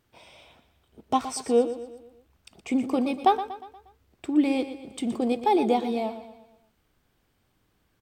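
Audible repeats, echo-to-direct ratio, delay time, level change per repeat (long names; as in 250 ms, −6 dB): 4, −11.0 dB, 119 ms, −6.5 dB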